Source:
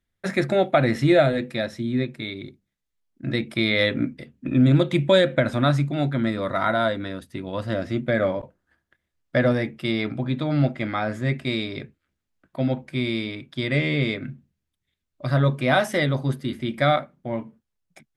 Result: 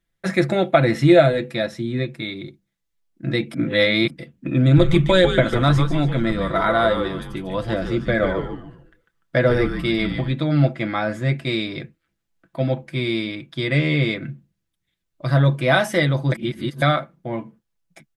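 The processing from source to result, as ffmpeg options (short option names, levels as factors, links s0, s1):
-filter_complex "[0:a]asettb=1/sr,asplit=3[s0][s1][s2];[s0]atrim=end=4.624[s3];[s1]atrim=start=4.62:end=10.33,asetpts=PTS-STARTPTS,afade=t=in:d=0.004:c=qsin,afade=t=out:st=5.706:d=0.004:c=qsin,asplit=5[s4][s5][s6][s7][s8];[s5]adelay=147,afreqshift=-150,volume=0.447[s9];[s6]adelay=294,afreqshift=-300,volume=0.16[s10];[s7]adelay=441,afreqshift=-450,volume=0.0582[s11];[s8]adelay=588,afreqshift=-600,volume=0.0209[s12];[s4][s9][s10][s11][s12]amix=inputs=5:normalize=0,atrim=end_sample=251811[s13];[s2]atrim=start=10.326[s14];[s3][s13]acrossfade=d=0.004:c1=hsin:c2=qsin[s15];[s15][s14]acrossfade=d=0.004:c1=qsin:c2=hsin,asplit=5[s16][s17][s18][s19][s20];[s16]atrim=end=3.542[s21];[s17]atrim=start=3.538:end=4.102,asetpts=PTS-STARTPTS,areverse[s22];[s18]atrim=start=4.098:end=16.322[s23];[s19]atrim=start=16.318:end=16.822,asetpts=PTS-STARTPTS,areverse[s24];[s20]atrim=start=16.818[s25];[s21][s22]acrossfade=d=0.004:c1=hsin:c2=hsin[s26];[s26][s23]acrossfade=d=0.004:c1=hsin:c2=hsin[s27];[s27][s24]acrossfade=d=0.004:c1=hsin:c2=hsin[s28];[s28][s25]acrossfade=d=0.004:c1=hsin:c2=hsin,aecho=1:1:6:0.48,volume=1.26"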